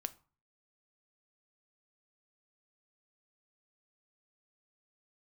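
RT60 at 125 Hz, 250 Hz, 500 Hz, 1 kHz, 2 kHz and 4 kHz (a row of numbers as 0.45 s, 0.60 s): 0.55 s, 0.45 s, 0.35 s, 0.45 s, 0.30 s, 0.25 s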